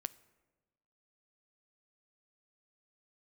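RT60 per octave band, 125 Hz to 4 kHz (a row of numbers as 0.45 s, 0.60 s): 1.4 s, 1.4 s, 1.3 s, 1.1 s, 0.95 s, 0.70 s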